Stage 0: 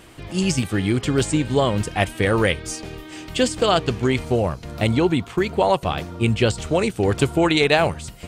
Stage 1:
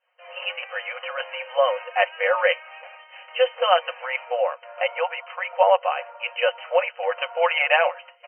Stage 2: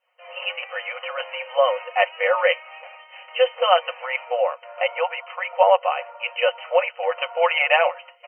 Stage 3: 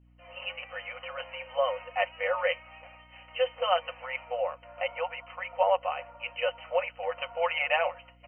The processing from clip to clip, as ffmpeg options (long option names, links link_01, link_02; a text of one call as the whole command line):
ffmpeg -i in.wav -af "agate=range=-33dB:threshold=-32dB:ratio=3:detection=peak,afftfilt=real='re*between(b*sr/4096,480,3100)':imag='im*between(b*sr/4096,480,3100)':win_size=4096:overlap=0.75,aecho=1:1:5.5:0.61" out.wav
ffmpeg -i in.wav -af "bandreject=frequency=1600:width=8.2,volume=1.5dB" out.wav
ffmpeg -i in.wav -af "aeval=exprs='val(0)+0.00355*(sin(2*PI*60*n/s)+sin(2*PI*2*60*n/s)/2+sin(2*PI*3*60*n/s)/3+sin(2*PI*4*60*n/s)/4+sin(2*PI*5*60*n/s)/5)':channel_layout=same,volume=-9dB" out.wav